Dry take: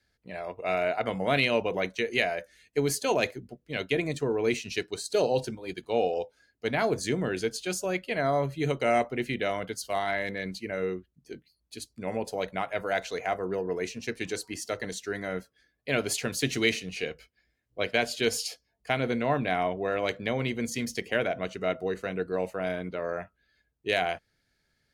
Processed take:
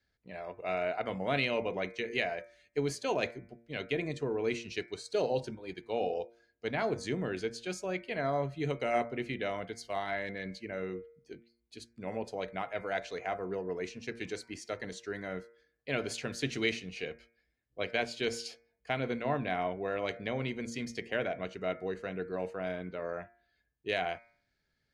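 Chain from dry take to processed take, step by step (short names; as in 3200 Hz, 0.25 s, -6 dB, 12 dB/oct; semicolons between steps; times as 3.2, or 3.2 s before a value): air absorption 69 m; de-hum 116.5 Hz, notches 21; gain -5 dB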